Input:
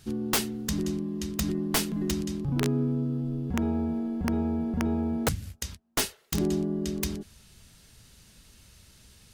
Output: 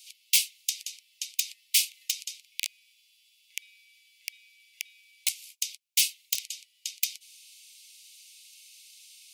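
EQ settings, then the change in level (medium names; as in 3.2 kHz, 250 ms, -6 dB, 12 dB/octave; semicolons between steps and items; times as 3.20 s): steep high-pass 2.2 kHz 96 dB/octave; +6.0 dB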